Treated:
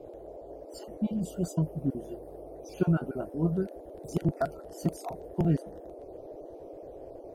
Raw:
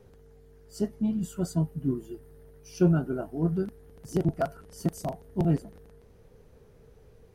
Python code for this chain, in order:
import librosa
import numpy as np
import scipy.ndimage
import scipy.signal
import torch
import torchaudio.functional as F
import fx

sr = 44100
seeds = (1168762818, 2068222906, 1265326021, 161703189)

y = fx.spec_dropout(x, sr, seeds[0], share_pct=30)
y = fx.dmg_noise_band(y, sr, seeds[1], low_hz=300.0, high_hz=670.0, level_db=-44.0)
y = y * 10.0 ** (-1.0 / 20.0)